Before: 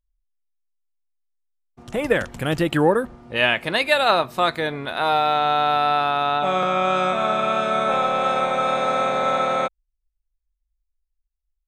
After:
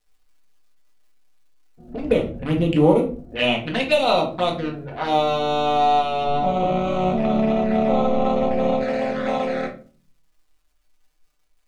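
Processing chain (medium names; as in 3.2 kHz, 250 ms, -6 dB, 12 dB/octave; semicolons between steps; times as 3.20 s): local Wiener filter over 41 samples; level-controlled noise filter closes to 1.3 kHz, open at -17 dBFS; 6.24–8.81 s: tilt EQ -2 dB/octave; crackle 220 per s -55 dBFS; touch-sensitive flanger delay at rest 6.7 ms, full sweep at -19 dBFS; simulated room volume 290 m³, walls furnished, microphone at 1.9 m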